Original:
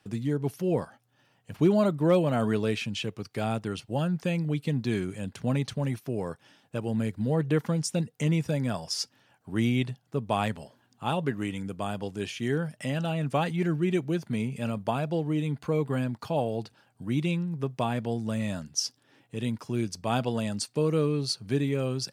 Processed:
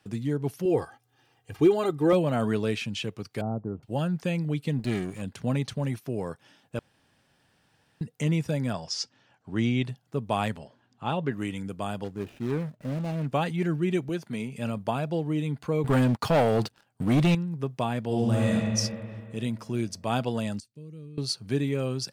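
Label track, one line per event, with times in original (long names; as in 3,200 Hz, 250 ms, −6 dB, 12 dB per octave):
0.650000	2.130000	comb filter 2.5 ms, depth 77%
3.410000	3.830000	Bessel low-pass filter 670 Hz, order 6
4.790000	5.220000	lower of the sound and its delayed copy delay 0.42 ms
6.790000	8.010000	fill with room tone
8.730000	9.850000	low-pass filter 7,100 Hz 24 dB per octave
10.580000	11.320000	high-frequency loss of the air 90 metres
12.040000	13.330000	running median over 41 samples
14.090000	14.570000	high-pass filter 230 Hz 6 dB per octave
15.840000	17.350000	leveller curve on the samples passes 3
18.050000	18.490000	thrown reverb, RT60 2.5 s, DRR −6 dB
20.600000	21.180000	guitar amp tone stack bass-middle-treble 10-0-1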